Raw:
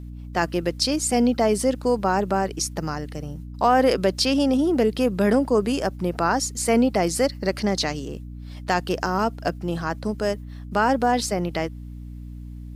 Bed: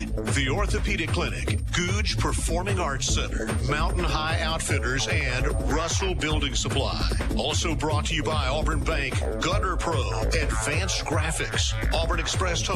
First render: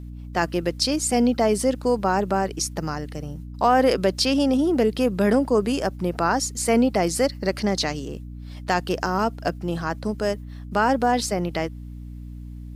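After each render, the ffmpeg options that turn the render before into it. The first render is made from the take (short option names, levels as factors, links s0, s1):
-af anull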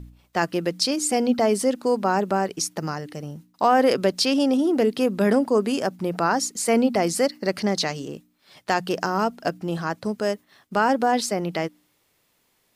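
-af "bandreject=f=60:t=h:w=4,bandreject=f=120:t=h:w=4,bandreject=f=180:t=h:w=4,bandreject=f=240:t=h:w=4,bandreject=f=300:t=h:w=4"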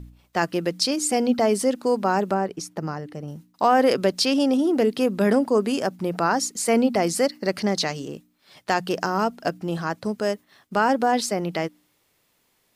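-filter_complex "[0:a]asettb=1/sr,asplit=3[s0][s1][s2];[s0]atrim=end=2.344[s3];[s1]atrim=start=2.34:end=3.28,asetpts=PTS-STARTPTS,afade=t=in:d=0.004:c=qsin,afade=t=out:st=0.936:d=0.004:c=qsin,highshelf=f=2100:g=-10[s4];[s2]atrim=start=3.276[s5];[s3][s4]acrossfade=d=0.004:c1=hsin:c2=qsin[s6];[s6][s5]acrossfade=d=0.004:c1=qsin:c2=hsin"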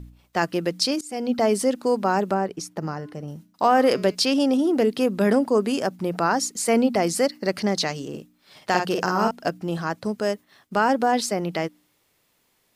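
-filter_complex "[0:a]asplit=3[s0][s1][s2];[s0]afade=t=out:st=2.81:d=0.02[s3];[s1]bandreject=f=209.6:t=h:w=4,bandreject=f=419.2:t=h:w=4,bandreject=f=628.8:t=h:w=4,bandreject=f=838.4:t=h:w=4,bandreject=f=1048:t=h:w=4,bandreject=f=1257.6:t=h:w=4,bandreject=f=1467.2:t=h:w=4,bandreject=f=1676.8:t=h:w=4,bandreject=f=1886.4:t=h:w=4,bandreject=f=2096:t=h:w=4,bandreject=f=2305.6:t=h:w=4,bandreject=f=2515.2:t=h:w=4,bandreject=f=2724.8:t=h:w=4,bandreject=f=2934.4:t=h:w=4,bandreject=f=3144:t=h:w=4,bandreject=f=3353.6:t=h:w=4,bandreject=f=3563.2:t=h:w=4,bandreject=f=3772.8:t=h:w=4,bandreject=f=3982.4:t=h:w=4,bandreject=f=4192:t=h:w=4,bandreject=f=4401.6:t=h:w=4,bandreject=f=4611.2:t=h:w=4,bandreject=f=4820.8:t=h:w=4,bandreject=f=5030.4:t=h:w=4,bandreject=f=5240:t=h:w=4,bandreject=f=5449.6:t=h:w=4,bandreject=f=5659.2:t=h:w=4,bandreject=f=5868.8:t=h:w=4,bandreject=f=6078.4:t=h:w=4,bandreject=f=6288:t=h:w=4,bandreject=f=6497.6:t=h:w=4,bandreject=f=6707.2:t=h:w=4,bandreject=f=6916.8:t=h:w=4,bandreject=f=7126.4:t=h:w=4,bandreject=f=7336:t=h:w=4,bandreject=f=7545.6:t=h:w=4,bandreject=f=7755.2:t=h:w=4,afade=t=in:st=2.81:d=0.02,afade=t=out:st=4.14:d=0.02[s4];[s2]afade=t=in:st=4.14:d=0.02[s5];[s3][s4][s5]amix=inputs=3:normalize=0,asettb=1/sr,asplit=3[s6][s7][s8];[s6]atrim=end=8.094[s9];[s7]atrim=start=8.09:end=9.31,asetpts=PTS-STARTPTS,afade=t=in:d=0.004:c=qsin,afade=t=out:st=1.216:d=0.004:c=qsin,asplit=2[s10][s11];[s11]adelay=50,volume=0.668[s12];[s10][s12]amix=inputs=2:normalize=0,atrim=end_sample=53802[s13];[s8]atrim=start=9.306[s14];[s9][s13]acrossfade=d=0.004:c1=hsin:c2=qsin[s15];[s15][s14]acrossfade=d=0.004:c1=qsin:c2=hsin,asplit=2[s16][s17];[s16]atrim=end=1.01,asetpts=PTS-STARTPTS,afade=t=out:st=1.006:d=0.004:c=hsin:silence=0.0668344[s18];[s17]atrim=start=1.01,asetpts=PTS-STARTPTS,afade=t=in:d=0.43:silence=0.0668344[s19];[s18][s19]concat=n=2:v=0:a=1"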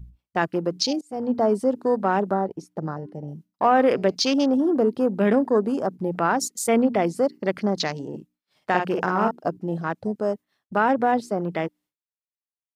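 -af "agate=range=0.0224:threshold=0.00398:ratio=3:detection=peak,afwtdn=0.0282"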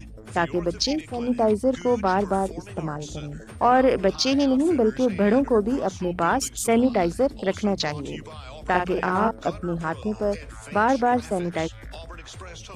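-filter_complex "[1:a]volume=0.188[s0];[0:a][s0]amix=inputs=2:normalize=0"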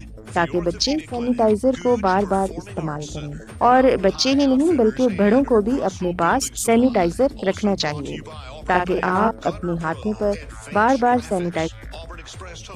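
-af "volume=1.5"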